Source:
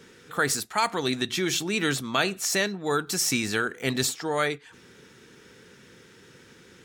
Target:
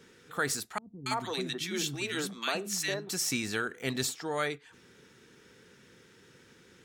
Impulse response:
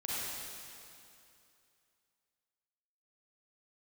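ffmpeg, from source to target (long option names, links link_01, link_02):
-filter_complex "[0:a]asettb=1/sr,asplit=3[link_01][link_02][link_03];[link_01]atrim=end=0.784[link_04];[link_02]atrim=start=0.78:end=3.09,asetpts=PTS-STARTPTS,afade=type=in:duration=0.004:curve=qsin,afade=type=out:start_time=2.306:duration=0.004:curve=qsin,acrossover=split=260|1400[link_05][link_06][link_07];[link_07]adelay=280[link_08];[link_06]adelay=330[link_09];[link_05][link_09][link_08]amix=inputs=3:normalize=0,atrim=end_sample=101871[link_10];[link_03]atrim=start=3.086[link_11];[link_04][link_10]acrossfade=duration=0.004:curve1=hsin:curve2=qsin[link_12];[link_12][link_11]acrossfade=duration=0.004:curve1=qsin:curve2=hsin,volume=-6dB"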